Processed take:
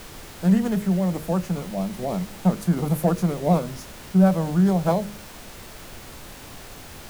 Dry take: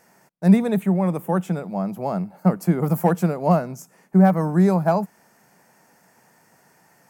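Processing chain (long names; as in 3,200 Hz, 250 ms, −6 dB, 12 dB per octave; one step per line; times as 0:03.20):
hum removal 51.73 Hz, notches 12
background noise pink −39 dBFS
formants moved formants −3 semitones
level −1.5 dB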